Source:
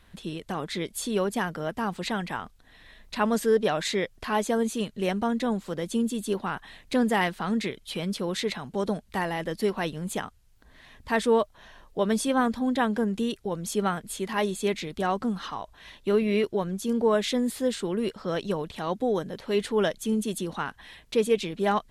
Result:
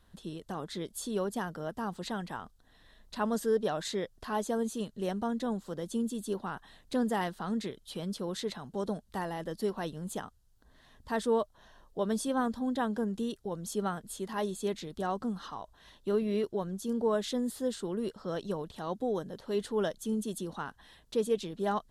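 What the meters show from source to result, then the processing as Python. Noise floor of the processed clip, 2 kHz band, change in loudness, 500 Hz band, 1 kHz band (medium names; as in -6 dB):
-64 dBFS, -10.5 dB, -6.5 dB, -6.0 dB, -6.5 dB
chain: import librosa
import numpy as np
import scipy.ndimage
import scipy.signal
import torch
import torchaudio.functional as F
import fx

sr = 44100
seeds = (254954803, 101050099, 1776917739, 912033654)

y = fx.peak_eq(x, sr, hz=2300.0, db=-12.0, octaves=0.58)
y = y * librosa.db_to_amplitude(-6.0)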